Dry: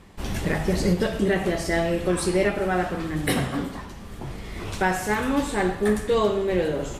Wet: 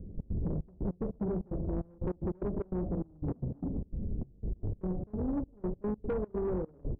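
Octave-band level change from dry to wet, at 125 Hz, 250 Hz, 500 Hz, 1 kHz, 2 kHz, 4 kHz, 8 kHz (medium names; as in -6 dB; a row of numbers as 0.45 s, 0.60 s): -7.0 dB, -10.0 dB, -13.5 dB, -20.5 dB, under -30 dB, under -40 dB, under -40 dB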